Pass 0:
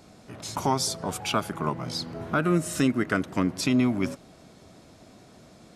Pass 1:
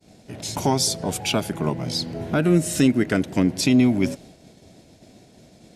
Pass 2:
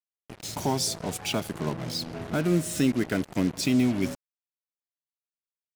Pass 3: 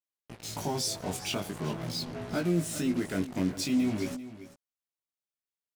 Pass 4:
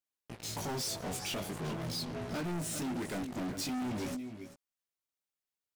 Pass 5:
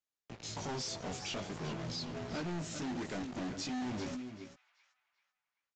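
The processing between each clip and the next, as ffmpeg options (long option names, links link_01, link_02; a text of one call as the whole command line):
ffmpeg -i in.wav -af "equalizer=frequency=1200:width_type=o:width=0.65:gain=-13.5,agate=range=-33dB:threshold=-47dB:ratio=3:detection=peak,acontrast=61" out.wav
ffmpeg -i in.wav -af "acrusher=bits=4:mix=0:aa=0.5,volume=-6dB" out.wav
ffmpeg -i in.wav -af "alimiter=limit=-18dB:level=0:latency=1:release=21,flanger=delay=16.5:depth=5:speed=0.45,aecho=1:1:392:0.188" out.wav
ffmpeg -i in.wav -af "volume=34dB,asoftclip=hard,volume=-34dB" out.wav
ffmpeg -i in.wav -filter_complex "[0:a]acrossover=split=220|1200[link_01][link_02][link_03];[link_02]acrusher=bits=2:mode=log:mix=0:aa=0.000001[link_04];[link_03]asplit=2[link_05][link_06];[link_06]adelay=386,lowpass=frequency=3700:poles=1,volume=-11dB,asplit=2[link_07][link_08];[link_08]adelay=386,lowpass=frequency=3700:poles=1,volume=0.42,asplit=2[link_09][link_10];[link_10]adelay=386,lowpass=frequency=3700:poles=1,volume=0.42,asplit=2[link_11][link_12];[link_12]adelay=386,lowpass=frequency=3700:poles=1,volume=0.42[link_13];[link_05][link_07][link_09][link_11][link_13]amix=inputs=5:normalize=0[link_14];[link_01][link_04][link_14]amix=inputs=3:normalize=0,aresample=16000,aresample=44100,volume=-2.5dB" out.wav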